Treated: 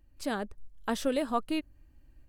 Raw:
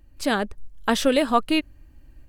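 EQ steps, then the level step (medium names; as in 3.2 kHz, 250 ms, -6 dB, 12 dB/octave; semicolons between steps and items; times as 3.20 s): dynamic bell 2.8 kHz, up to -5 dB, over -37 dBFS, Q 0.71; -9.0 dB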